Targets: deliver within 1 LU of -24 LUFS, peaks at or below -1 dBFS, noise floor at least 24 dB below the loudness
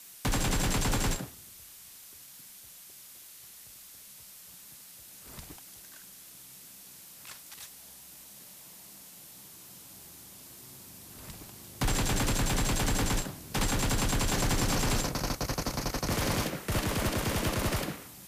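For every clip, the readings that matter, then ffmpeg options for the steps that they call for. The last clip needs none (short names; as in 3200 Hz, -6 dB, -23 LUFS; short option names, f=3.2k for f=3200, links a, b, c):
noise floor -51 dBFS; noise floor target -54 dBFS; loudness -30.0 LUFS; peak -19.0 dBFS; loudness target -24.0 LUFS
-> -af "afftdn=nr=6:nf=-51"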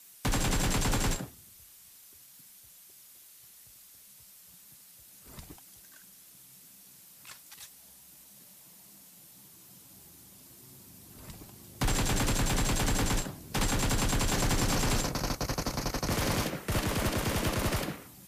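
noise floor -55 dBFS; loudness -30.0 LUFS; peak -19.0 dBFS; loudness target -24.0 LUFS
-> -af "volume=6dB"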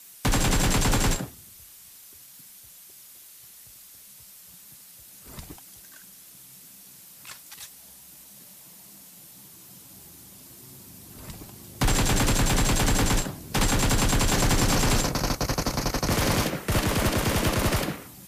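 loudness -24.0 LUFS; peak -13.0 dBFS; noise floor -49 dBFS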